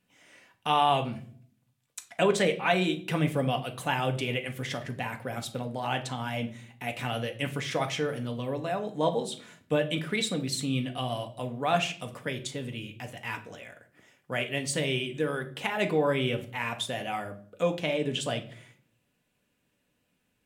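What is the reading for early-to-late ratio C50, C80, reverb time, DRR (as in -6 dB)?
13.5 dB, 18.0 dB, no single decay rate, 4.5 dB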